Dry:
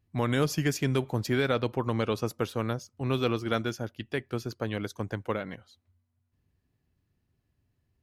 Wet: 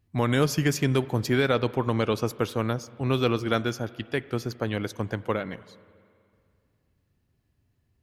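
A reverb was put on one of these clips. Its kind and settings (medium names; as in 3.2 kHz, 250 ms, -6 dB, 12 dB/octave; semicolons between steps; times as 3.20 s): spring tank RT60 2.3 s, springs 41/47 ms, chirp 50 ms, DRR 18 dB; trim +3.5 dB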